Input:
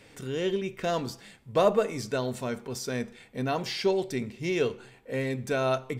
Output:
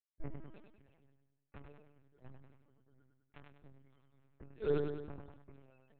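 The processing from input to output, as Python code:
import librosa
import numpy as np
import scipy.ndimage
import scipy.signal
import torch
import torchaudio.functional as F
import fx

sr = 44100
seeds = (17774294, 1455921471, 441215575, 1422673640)

p1 = fx.lowpass(x, sr, hz=1500.0, slope=6)
p2 = fx.schmitt(p1, sr, flips_db=-33.5)
p3 = fx.rotary_switch(p2, sr, hz=6.3, then_hz=1.2, switch_at_s=1.42)
p4 = fx.gate_flip(p3, sr, shuts_db=-28.0, range_db=-39)
p5 = fx.stiff_resonator(p4, sr, f0_hz=130.0, decay_s=0.27, stiffness=0.03)
p6 = fx.spec_topn(p5, sr, count=32)
p7 = p6 + fx.echo_feedback(p6, sr, ms=99, feedback_pct=45, wet_db=-5.5, dry=0)
p8 = fx.lpc_vocoder(p7, sr, seeds[0], excitation='pitch_kept', order=8)
p9 = fx.sustainer(p8, sr, db_per_s=53.0)
y = p9 * 10.0 ** (10.5 / 20.0)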